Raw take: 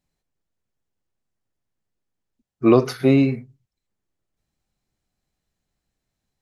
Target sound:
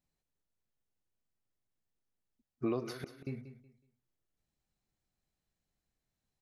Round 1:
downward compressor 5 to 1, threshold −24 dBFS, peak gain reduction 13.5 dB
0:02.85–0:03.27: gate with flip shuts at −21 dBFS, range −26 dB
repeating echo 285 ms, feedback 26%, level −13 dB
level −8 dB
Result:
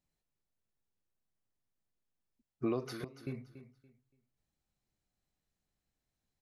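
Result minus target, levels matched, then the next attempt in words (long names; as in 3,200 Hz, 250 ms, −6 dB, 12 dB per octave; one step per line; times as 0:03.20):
echo 100 ms late
downward compressor 5 to 1, threshold −24 dBFS, peak gain reduction 13.5 dB
0:02.85–0:03.27: gate with flip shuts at −21 dBFS, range −26 dB
repeating echo 185 ms, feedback 26%, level −13 dB
level −8 dB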